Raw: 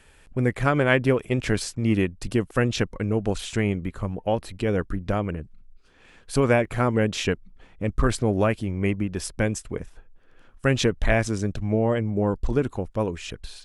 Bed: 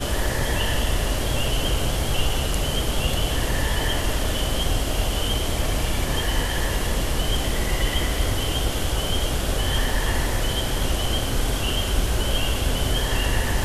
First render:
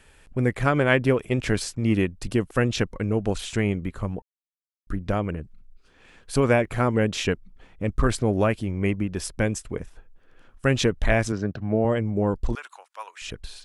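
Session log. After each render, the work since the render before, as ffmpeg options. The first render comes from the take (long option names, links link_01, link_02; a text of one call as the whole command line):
ffmpeg -i in.wav -filter_complex "[0:a]asettb=1/sr,asplit=3[link_01][link_02][link_03];[link_01]atrim=end=11.324[link_04];[link_02]atrim=start=11.32:end=11.85,asetpts=PTS-STARTPTS,afade=type=in:duration=0.004:curve=qsin,afade=type=out:start_time=0.526:duration=0.004:curve=qsin,highpass=100,equalizer=frequency=690:width_type=q:width=4:gain=3,equalizer=frequency=1500:width_type=q:width=4:gain=5,equalizer=frequency=2300:width_type=q:width=4:gain=-6,equalizer=frequency=3500:width_type=q:width=4:gain=-8,lowpass=frequency=4600:width=0.5412,lowpass=frequency=4600:width=1.3066[link_05];[link_03]atrim=start=11.846[link_06];[link_04][link_05]acrossfade=duration=0.004:curve1=hsin:curve2=qsin[link_07];[link_07][link_06]acrossfade=duration=0.004:curve1=qsin:curve2=hsin,asettb=1/sr,asplit=3[link_08][link_09][link_10];[link_08]atrim=end=12.554[link_11];[link_09]atrim=start=12.55:end=13.22,asetpts=PTS-STARTPTS,afade=type=in:duration=0.004:curve=qsin,afade=type=out:start_time=0.666:duration=0.004:curve=qsin,highpass=frequency=960:width=0.5412,highpass=frequency=960:width=1.3066[link_12];[link_10]atrim=start=13.216[link_13];[link_11][link_12]acrossfade=duration=0.004:curve1=hsin:curve2=qsin[link_14];[link_14][link_13]acrossfade=duration=0.004:curve1=qsin:curve2=hsin,asplit=3[link_15][link_16][link_17];[link_15]atrim=end=4.22,asetpts=PTS-STARTPTS,afade=type=out:start_time=4.216:duration=0.004:curve=hsin[link_18];[link_16]atrim=start=4.22:end=4.87,asetpts=PTS-STARTPTS,volume=0[link_19];[link_17]atrim=start=4.87,asetpts=PTS-STARTPTS,afade=type=in:duration=0.004:curve=hsin[link_20];[link_18][link_19][link_20]concat=n=3:v=0:a=1" out.wav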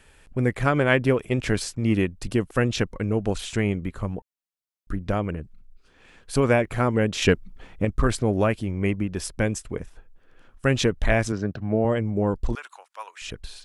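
ffmpeg -i in.wav -filter_complex "[0:a]asettb=1/sr,asplit=3[link_01][link_02][link_03];[link_01]atrim=end=7.224[link_04];[link_02]atrim=start=7.22:end=7.85,asetpts=PTS-STARTPTS,afade=type=in:duration=0.004:curve=qsin,afade=type=out:start_time=0.626:duration=0.004:curve=qsin,acontrast=53[link_05];[link_03]atrim=start=7.846[link_06];[link_04][link_05]acrossfade=duration=0.004:curve1=hsin:curve2=qsin[link_07];[link_07][link_06]acrossfade=duration=0.004:curve1=qsin:curve2=hsin" out.wav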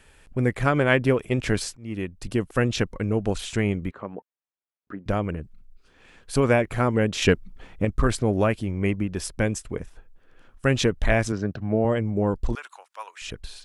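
ffmpeg -i in.wav -filter_complex "[0:a]asettb=1/sr,asplit=3[link_01][link_02][link_03];[link_01]atrim=end=3.914[link_04];[link_02]atrim=start=3.91:end=5.06,asetpts=PTS-STARTPTS,afade=type=in:duration=0.004:curve=qsin,afade=type=out:start_time=1.146:duration=0.004:curve=qsin,highpass=280,lowpass=2100[link_05];[link_03]atrim=start=5.056[link_06];[link_04][link_05]acrossfade=duration=0.004:curve1=hsin:curve2=qsin[link_07];[link_07][link_06]acrossfade=duration=0.004:curve1=qsin:curve2=hsin,asplit=2[link_08][link_09];[link_08]atrim=end=1.77,asetpts=PTS-STARTPTS,afade=type=out:start_time=1.766:duration=0.004:curve=hsin:silence=0.0668344[link_10];[link_09]atrim=start=1.77,asetpts=PTS-STARTPTS,afade=type=in:duration=0.96:curve=qsin:silence=0.0668344[link_11];[link_10][link_11]concat=n=2:v=0:a=1" out.wav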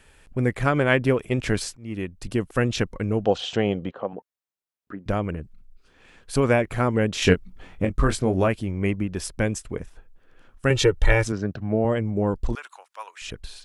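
ffmpeg -i in.wav -filter_complex "[0:a]asettb=1/sr,asplit=3[link_01][link_02][link_03];[link_01]atrim=end=3.244[link_04];[link_02]atrim=start=3.24:end=4.13,asetpts=PTS-STARTPTS,afade=type=in:duration=0.004:curve=qsin,afade=type=out:start_time=0.886:duration=0.004:curve=qsin,highpass=120,equalizer=frequency=510:width_type=q:width=4:gain=10,equalizer=frequency=750:width_type=q:width=4:gain=10,equalizer=frequency=2200:width_type=q:width=4:gain=-6,equalizer=frequency=3100:width_type=q:width=4:gain=9,lowpass=frequency=6000:width=0.5412,lowpass=frequency=6000:width=1.3066[link_05];[link_03]atrim=start=4.126[link_06];[link_04][link_05]acrossfade=duration=0.004:curve1=hsin:curve2=qsin[link_07];[link_07][link_06]acrossfade=duration=0.004:curve1=qsin:curve2=hsin,asettb=1/sr,asplit=3[link_08][link_09][link_10];[link_08]atrim=end=7.184[link_11];[link_09]atrim=start=7.18:end=8.48,asetpts=PTS-STARTPTS,afade=type=in:duration=0.004:curve=qsin,afade=type=out:start_time=1.296:duration=0.004:curve=qsin,asplit=2[link_12][link_13];[link_13]adelay=22,volume=-7.5dB[link_14];[link_12][link_14]amix=inputs=2:normalize=0,atrim=end_sample=57330[link_15];[link_10]atrim=start=8.476[link_16];[link_11][link_15]acrossfade=duration=0.004:curve1=hsin:curve2=qsin[link_17];[link_17][link_16]acrossfade=duration=0.004:curve1=qsin:curve2=hsin,asettb=1/sr,asplit=3[link_18][link_19][link_20];[link_18]atrim=end=10.704[link_21];[link_19]atrim=start=10.7:end=11.24,asetpts=PTS-STARTPTS,afade=type=in:duration=0.004:curve=qsin,afade=type=out:start_time=0.536:duration=0.004:curve=qsin,aecho=1:1:2.2:0.87,atrim=end_sample=23814[link_22];[link_20]atrim=start=11.236[link_23];[link_21][link_22]acrossfade=duration=0.004:curve1=hsin:curve2=qsin[link_24];[link_24][link_23]acrossfade=duration=0.004:curve1=qsin:curve2=hsin" out.wav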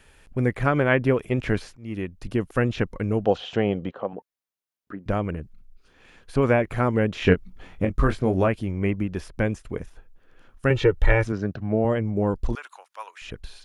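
ffmpeg -i in.wav -filter_complex "[0:a]acrossover=split=2900[link_01][link_02];[link_02]acompressor=threshold=-48dB:ratio=4:attack=1:release=60[link_03];[link_01][link_03]amix=inputs=2:normalize=0,bandreject=frequency=7900:width=12" out.wav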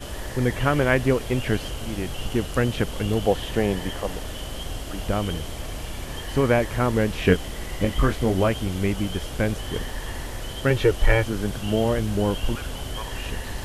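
ffmpeg -i in.wav -i bed.wav -filter_complex "[1:a]volume=-9.5dB[link_01];[0:a][link_01]amix=inputs=2:normalize=0" out.wav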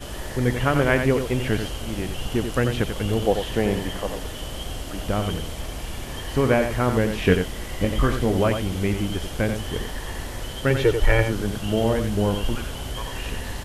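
ffmpeg -i in.wav -af "aecho=1:1:89:0.422" out.wav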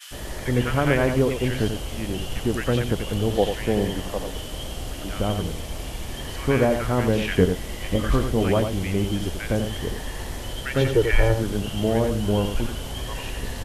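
ffmpeg -i in.wav -filter_complex "[0:a]acrossover=split=1400[link_01][link_02];[link_01]adelay=110[link_03];[link_03][link_02]amix=inputs=2:normalize=0" out.wav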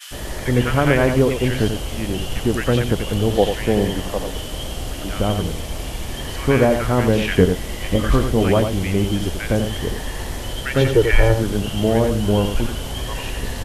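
ffmpeg -i in.wav -af "volume=4.5dB,alimiter=limit=-1dB:level=0:latency=1" out.wav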